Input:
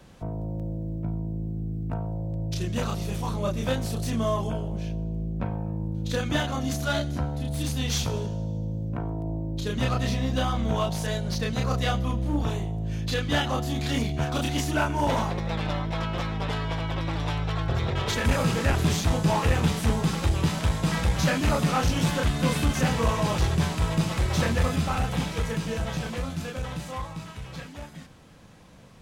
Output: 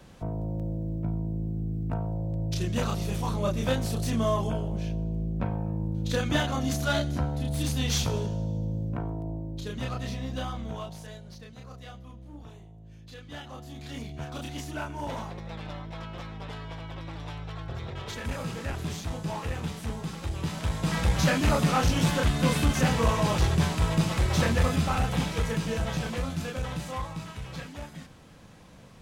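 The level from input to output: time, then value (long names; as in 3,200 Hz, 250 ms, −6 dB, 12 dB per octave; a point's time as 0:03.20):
0:08.80 0 dB
0:09.84 −7.5 dB
0:10.46 −7.5 dB
0:11.51 −19 dB
0:13.09 −19 dB
0:14.22 −10 dB
0:20.19 −10 dB
0:21.11 0 dB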